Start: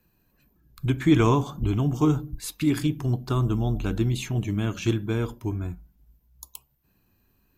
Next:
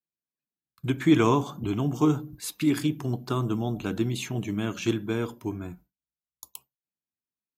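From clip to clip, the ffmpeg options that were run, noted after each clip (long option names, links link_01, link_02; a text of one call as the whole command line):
ffmpeg -i in.wav -af "highpass=160,agate=range=-33dB:threshold=-45dB:ratio=3:detection=peak" out.wav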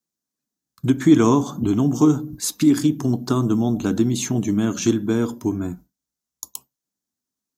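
ffmpeg -i in.wav -filter_complex "[0:a]equalizer=frequency=250:width_type=o:width=0.67:gain=8,equalizer=frequency=2500:width_type=o:width=0.67:gain=-8,equalizer=frequency=6300:width_type=o:width=0.67:gain=8,asplit=2[link_01][link_02];[link_02]acompressor=threshold=-26dB:ratio=6,volume=2.5dB[link_03];[link_01][link_03]amix=inputs=2:normalize=0" out.wav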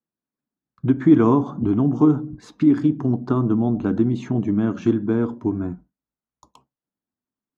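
ffmpeg -i in.wav -af "lowpass=1600" out.wav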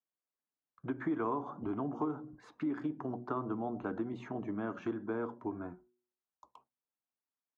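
ffmpeg -i in.wav -filter_complex "[0:a]acrossover=split=460 2300:gain=0.158 1 0.178[link_01][link_02][link_03];[link_01][link_02][link_03]amix=inputs=3:normalize=0,bandreject=frequency=121.5:width_type=h:width=4,bandreject=frequency=243:width_type=h:width=4,bandreject=frequency=364.5:width_type=h:width=4,acompressor=threshold=-26dB:ratio=4,volume=-5dB" out.wav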